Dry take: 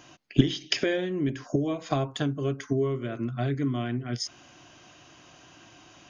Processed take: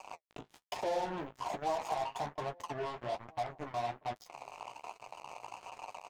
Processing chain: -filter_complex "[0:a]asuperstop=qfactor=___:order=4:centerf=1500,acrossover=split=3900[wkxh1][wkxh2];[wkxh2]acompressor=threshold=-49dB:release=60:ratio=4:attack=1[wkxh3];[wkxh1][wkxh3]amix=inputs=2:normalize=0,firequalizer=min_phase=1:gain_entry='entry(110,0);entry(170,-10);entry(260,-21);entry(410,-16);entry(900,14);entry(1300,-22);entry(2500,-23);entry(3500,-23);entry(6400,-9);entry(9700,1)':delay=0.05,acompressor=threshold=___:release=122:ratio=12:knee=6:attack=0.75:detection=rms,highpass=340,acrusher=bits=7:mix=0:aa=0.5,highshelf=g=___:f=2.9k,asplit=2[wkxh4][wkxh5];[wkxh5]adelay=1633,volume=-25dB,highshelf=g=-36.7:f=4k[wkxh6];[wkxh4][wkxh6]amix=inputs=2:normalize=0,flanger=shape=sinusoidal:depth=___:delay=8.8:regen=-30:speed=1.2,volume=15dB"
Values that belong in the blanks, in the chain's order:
4.4, -38dB, -5, 9.4